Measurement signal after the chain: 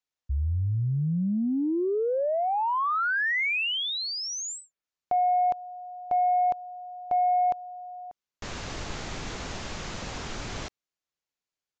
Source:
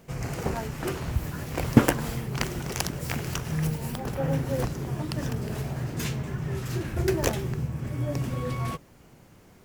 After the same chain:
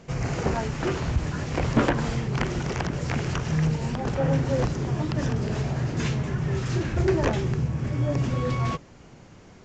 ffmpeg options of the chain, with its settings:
-filter_complex "[0:a]acrossover=split=2700[a][b];[b]acompressor=threshold=-39dB:ratio=4:attack=1:release=60[c];[a][c]amix=inputs=2:normalize=0,aresample=16000,asoftclip=type=tanh:threshold=-19dB,aresample=44100,volume=5dB"

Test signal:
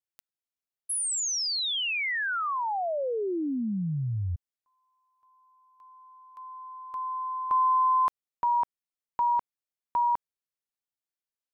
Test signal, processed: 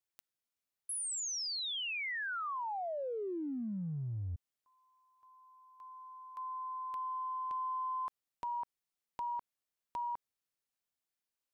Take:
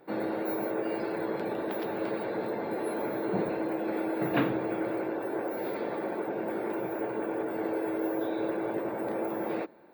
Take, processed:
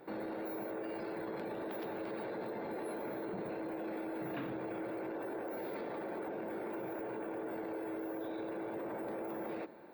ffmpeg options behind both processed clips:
-af "acompressor=threshold=-39dB:ratio=6:attack=0.81:release=29:knee=1:detection=rms,volume=1.5dB"

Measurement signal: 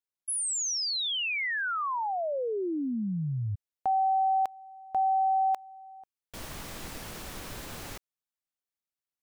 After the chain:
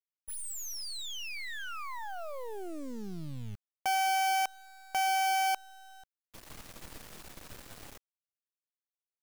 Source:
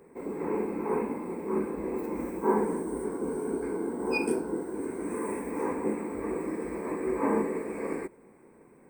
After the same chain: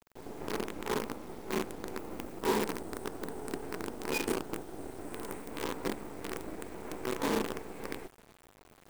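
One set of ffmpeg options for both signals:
-af "areverse,acompressor=mode=upward:threshold=-41dB:ratio=2.5:attack=0.3:release=520:knee=2.83:detection=peak,areverse,acrusher=bits=5:dc=4:mix=0:aa=0.000001,volume=-5dB"

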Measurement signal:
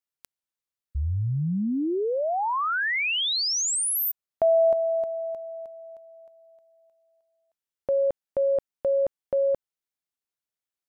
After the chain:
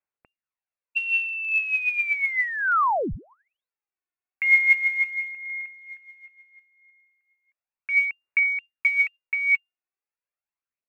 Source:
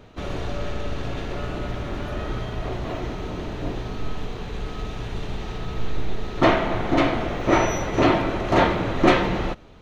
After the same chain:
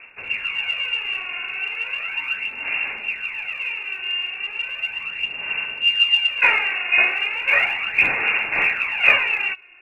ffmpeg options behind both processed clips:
-af "lowpass=f=2.4k:t=q:w=0.5098,lowpass=f=2.4k:t=q:w=0.6013,lowpass=f=2.4k:t=q:w=0.9,lowpass=f=2.4k:t=q:w=2.563,afreqshift=-2800,aphaser=in_gain=1:out_gain=1:delay=2.8:decay=0.57:speed=0.36:type=sinusoidal,volume=-1dB"

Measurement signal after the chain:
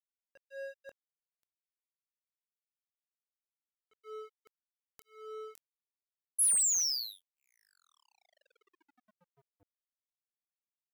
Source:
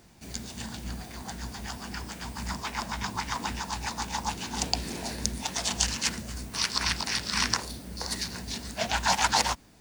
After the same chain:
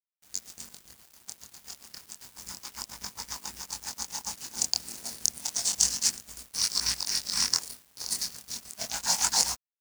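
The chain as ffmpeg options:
-af "flanger=delay=20:depth=6.1:speed=0.3,aexciter=amount=4.3:drive=7.8:freq=4.6k,aeval=exprs='sgn(val(0))*max(abs(val(0))-0.0266,0)':c=same,volume=-4.5dB"

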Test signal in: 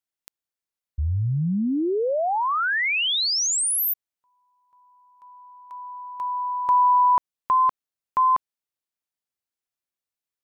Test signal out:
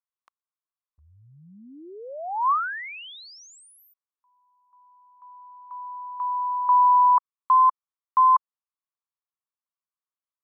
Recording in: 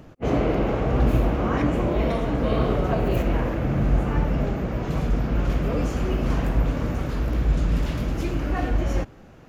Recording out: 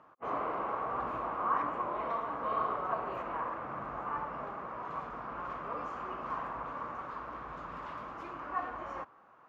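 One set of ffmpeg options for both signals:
-af "bandpass=f=1.1k:t=q:w=5.1:csg=0,volume=4dB"

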